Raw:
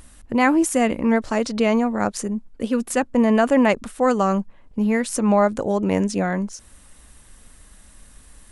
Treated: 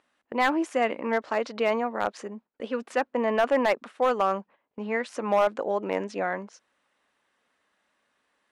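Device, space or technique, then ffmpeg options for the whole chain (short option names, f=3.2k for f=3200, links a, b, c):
walkie-talkie: -af "highpass=450,lowpass=3k,asoftclip=type=hard:threshold=-13dB,agate=range=-11dB:threshold=-47dB:ratio=16:detection=peak,volume=-2dB"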